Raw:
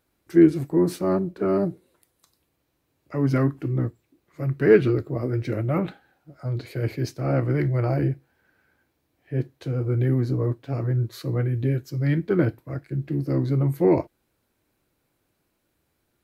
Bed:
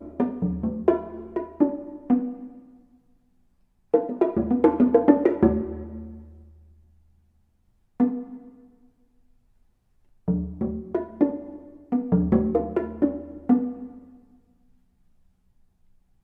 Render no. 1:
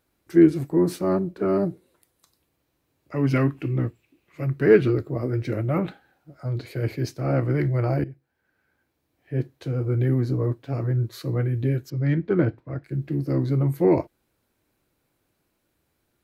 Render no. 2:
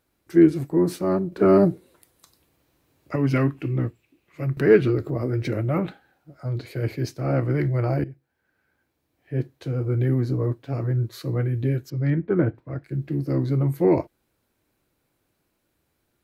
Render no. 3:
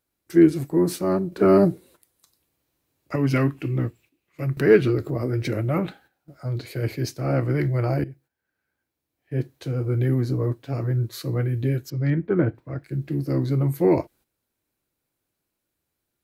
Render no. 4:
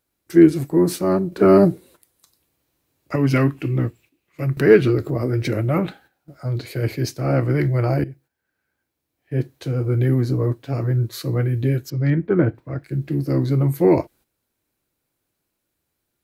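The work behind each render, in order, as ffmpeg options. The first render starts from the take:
-filter_complex "[0:a]asettb=1/sr,asplit=3[s0][s1][s2];[s0]atrim=end=3.164[s3];[s1]atrim=start=3.16:end=4.45,asetpts=PTS-STARTPTS,afade=t=in:d=0.004:c=qsin,afade=t=out:st=1.286:d=0.004:c=qsin,equalizer=f=2600:w=2.4:g=12.5[s4];[s2]atrim=start=4.446[s5];[s3][s4]acrossfade=d=0.004:c1=hsin:c2=qsin[s6];[s6][s5]acrossfade=d=0.004:c1=qsin:c2=hsin,asettb=1/sr,asplit=3[s7][s8][s9];[s7]atrim=end=11.904[s10];[s8]atrim=start=11.9:end=12.84,asetpts=PTS-STARTPTS,afade=t=in:d=0.004:c=qsin,afade=t=out:st=0.936:d=0.004:c=qsin,adynamicsmooth=sensitivity=1:basefreq=3600[s11];[s9]atrim=start=12.836[s12];[s10][s11]acrossfade=d=0.004:c1=hsin:c2=qsin[s13];[s13][s12]acrossfade=d=0.004:c1=qsin:c2=hsin,asplit=2[s14][s15];[s14]atrim=end=8.04,asetpts=PTS-STARTPTS,afade=t=out:st=8.036:d=0.004:c=hsin:silence=0.149624[s16];[s15]atrim=start=8.04,asetpts=PTS-STARTPTS,afade=t=in:d=1.32:silence=0.149624[s17];[s16][s17]concat=n=2:v=0:a=1"
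-filter_complex "[0:a]asettb=1/sr,asplit=3[s0][s1][s2];[s0]atrim=end=4.574[s3];[s1]atrim=start=4.57:end=5.78,asetpts=PTS-STARTPTS,afade=t=in:d=0.004:c=qsin,afade=t=out:st=1.206:d=0.004:c=qsin,acompressor=mode=upward:threshold=0.1:ratio=2.5:attack=3.2:release=140:knee=2.83:detection=peak[s4];[s2]atrim=start=5.776[s5];[s3][s4]acrossfade=d=0.004:c1=hsin:c2=qsin[s6];[s6][s5]acrossfade=d=0.004:c1=qsin:c2=hsin,asettb=1/sr,asplit=3[s7][s8][s9];[s7]atrim=end=12.104[s10];[s8]atrim=start=12.1:end=12.55,asetpts=PTS-STARTPTS,afade=t=in:d=0.004:c=qsin,afade=t=out:st=0.446:d=0.004:c=qsin,lowpass=2100[s11];[s9]atrim=start=12.546[s12];[s10][s11]acrossfade=d=0.004:c1=hsin:c2=qsin[s13];[s13][s12]acrossfade=d=0.004:c1=qsin:c2=hsin,asplit=3[s14][s15][s16];[s14]atrim=end=1.322[s17];[s15]atrim=start=1.318:end=3.162,asetpts=PTS-STARTPTS,volume=2.11[s18];[s16]atrim=start=3.158[s19];[s17][s18]acrossfade=d=0.004:c1=hsin:c2=hsin[s20];[s20][s19]acrossfade=d=0.004:c1=hsin:c2=hsin"
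-af "agate=range=0.316:threshold=0.00282:ratio=16:detection=peak,highshelf=f=3800:g=7"
-af "volume=1.5,alimiter=limit=0.891:level=0:latency=1"

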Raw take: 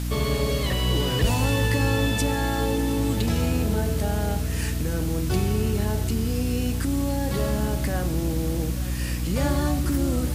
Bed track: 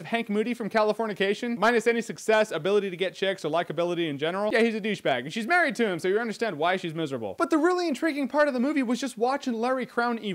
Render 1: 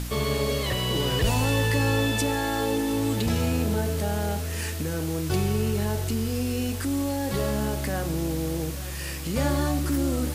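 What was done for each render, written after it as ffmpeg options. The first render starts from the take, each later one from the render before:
-af "bandreject=f=60:t=h:w=4,bandreject=f=120:t=h:w=4,bandreject=f=180:t=h:w=4,bandreject=f=240:t=h:w=4,bandreject=f=300:t=h:w=4"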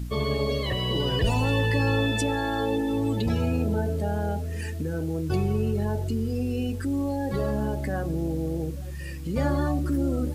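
-af "afftdn=nr=14:nf=-32"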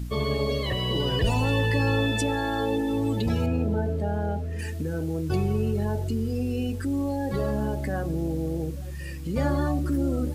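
-filter_complex "[0:a]asettb=1/sr,asplit=3[s0][s1][s2];[s0]atrim=end=3.464[s3];[s1]atrim=start=3.46:end=4.59,asetpts=PTS-STARTPTS,afade=t=in:d=0.004:c=qsin,afade=t=out:st=1.126:d=0.004:c=qsin,highshelf=f=4300:g=-12[s4];[s2]atrim=start=4.586[s5];[s3][s4]acrossfade=d=0.004:c1=hsin:c2=qsin[s6];[s6][s5]acrossfade=d=0.004:c1=qsin:c2=hsin"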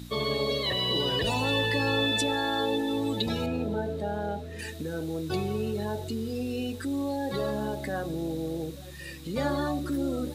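-af "highpass=f=280:p=1,equalizer=f=3800:t=o:w=0.22:g=14"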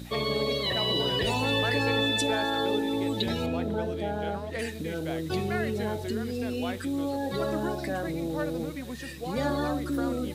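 -filter_complex "[1:a]volume=0.237[s0];[0:a][s0]amix=inputs=2:normalize=0"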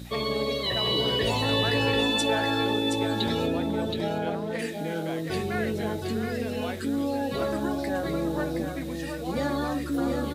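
-filter_complex "[0:a]asplit=2[s0][s1];[s1]adelay=18,volume=0.282[s2];[s0][s2]amix=inputs=2:normalize=0,aecho=1:1:722:0.531"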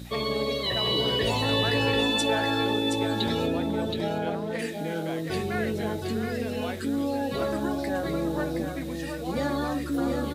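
-af anull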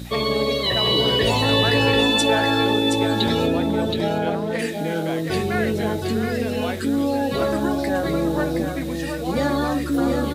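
-af "volume=2.11"

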